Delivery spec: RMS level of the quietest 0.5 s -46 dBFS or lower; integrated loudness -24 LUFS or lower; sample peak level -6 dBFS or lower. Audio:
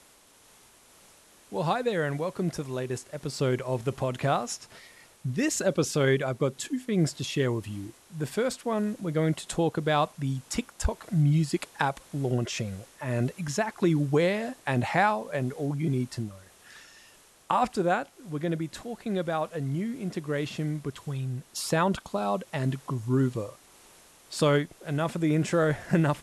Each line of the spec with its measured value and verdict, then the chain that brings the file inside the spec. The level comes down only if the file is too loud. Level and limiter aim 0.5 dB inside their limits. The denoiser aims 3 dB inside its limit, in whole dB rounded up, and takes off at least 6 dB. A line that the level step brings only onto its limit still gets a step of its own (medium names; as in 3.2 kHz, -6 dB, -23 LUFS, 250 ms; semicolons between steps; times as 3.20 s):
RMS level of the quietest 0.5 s -58 dBFS: pass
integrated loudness -29.0 LUFS: pass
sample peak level -10.5 dBFS: pass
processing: none needed